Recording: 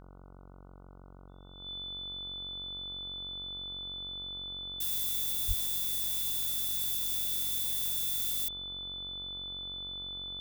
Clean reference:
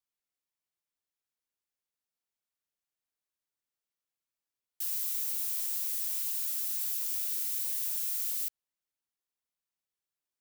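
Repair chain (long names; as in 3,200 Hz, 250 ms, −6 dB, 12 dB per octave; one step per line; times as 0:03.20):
hum removal 46.2 Hz, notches 32
notch filter 3,500 Hz, Q 30
0:05.47–0:05.59: high-pass filter 140 Hz 24 dB per octave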